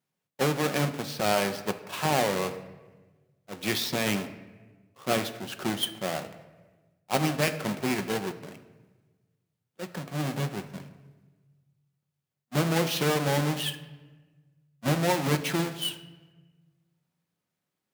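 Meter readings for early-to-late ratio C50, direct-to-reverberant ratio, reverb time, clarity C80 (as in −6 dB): 12.5 dB, 8.0 dB, 1.3 s, 14.0 dB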